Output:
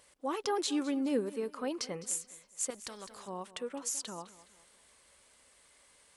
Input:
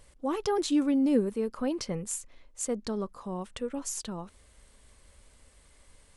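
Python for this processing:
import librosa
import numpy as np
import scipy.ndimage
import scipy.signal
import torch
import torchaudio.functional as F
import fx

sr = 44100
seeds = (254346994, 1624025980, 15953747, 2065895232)

p1 = fx.highpass(x, sr, hz=620.0, slope=6)
p2 = p1 + fx.echo_feedback(p1, sr, ms=208, feedback_pct=37, wet_db=-17.5, dry=0)
y = fx.spectral_comp(p2, sr, ratio=2.0, at=(2.7, 3.28))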